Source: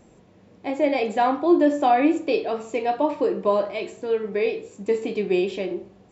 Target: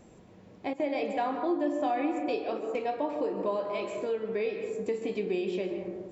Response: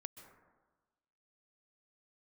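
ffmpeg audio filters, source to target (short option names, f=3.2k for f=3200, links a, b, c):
-filter_complex "[0:a]asettb=1/sr,asplit=3[a][b][c];[a]atrim=end=0.734[d];[b]atrim=start=0.73:end=2.94,asetpts=PTS-STARTPTS,afade=t=in:d=0.004:c=qsin,afade=t=out:st=2.206:d=0.004:c=qsin,agate=range=-12dB:threshold=-27dB:ratio=16:detection=peak[e];[c]atrim=start=2.936[f];[d][e]acrossfade=d=0.004:c1=hsin:c2=qsin[g];[g][f]acrossfade=d=0.004:c1=qsin:c2=hsin[h];[1:a]atrim=start_sample=2205[i];[h][i]afir=irnorm=-1:irlink=0,acompressor=threshold=-35dB:ratio=2.5,volume=4dB"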